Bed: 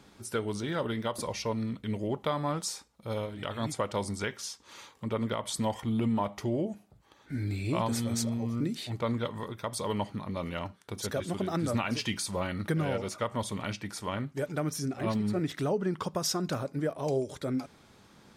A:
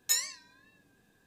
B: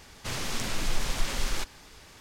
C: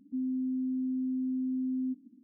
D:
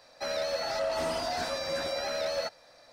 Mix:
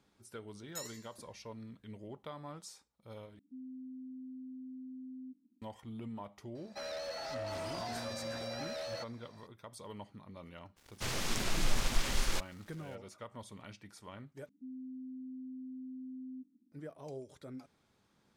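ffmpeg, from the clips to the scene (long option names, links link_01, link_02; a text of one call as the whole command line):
ffmpeg -i bed.wav -i cue0.wav -i cue1.wav -i cue2.wav -i cue3.wav -filter_complex "[3:a]asplit=2[link_01][link_02];[0:a]volume=-15.5dB[link_03];[1:a]aecho=1:1:90|180|270|360|450:0.251|0.118|0.0555|0.0261|0.0123[link_04];[4:a]asoftclip=type=tanh:threshold=-27.5dB[link_05];[2:a]aeval=exprs='sgn(val(0))*max(abs(val(0))-0.00355,0)':channel_layout=same[link_06];[link_03]asplit=3[link_07][link_08][link_09];[link_07]atrim=end=3.394[link_10];[link_01]atrim=end=2.23,asetpts=PTS-STARTPTS,volume=-15dB[link_11];[link_08]atrim=start=5.616:end=14.494[link_12];[link_02]atrim=end=2.23,asetpts=PTS-STARTPTS,volume=-13.5dB[link_13];[link_09]atrim=start=16.716[link_14];[link_04]atrim=end=1.26,asetpts=PTS-STARTPTS,volume=-16.5dB,afade=type=in:duration=0.004:curve=hsin,afade=type=out:start_time=1.256:duration=0.004:curve=hsin,adelay=660[link_15];[link_05]atrim=end=2.92,asetpts=PTS-STARTPTS,volume=-7.5dB,afade=type=in:duration=0.004:curve=hsin,afade=type=out:start_time=2.916:duration=0.004:curve=hsin,adelay=6550[link_16];[link_06]atrim=end=2.2,asetpts=PTS-STARTPTS,volume=-2.5dB,afade=type=in:duration=0.02,afade=type=out:start_time=2.18:duration=0.02,adelay=10760[link_17];[link_10][link_11]acrossfade=duration=0.004:curve1=hsin:curve2=hsin[link_18];[link_18][link_12]acrossfade=duration=0.004:curve1=hsin:curve2=hsin[link_19];[link_19][link_13]acrossfade=duration=0.004:curve1=hsin:curve2=hsin[link_20];[link_20][link_14]acrossfade=duration=0.004:curve1=hsin:curve2=hsin[link_21];[link_21][link_15][link_16][link_17]amix=inputs=4:normalize=0" out.wav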